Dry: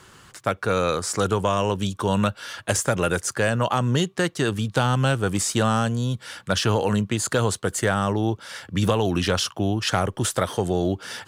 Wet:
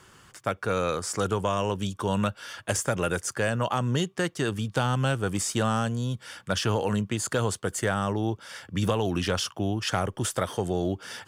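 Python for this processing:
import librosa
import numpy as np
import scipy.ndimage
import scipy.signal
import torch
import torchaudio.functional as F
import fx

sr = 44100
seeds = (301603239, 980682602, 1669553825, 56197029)

y = fx.notch(x, sr, hz=4000.0, q=12.0)
y = y * librosa.db_to_amplitude(-4.5)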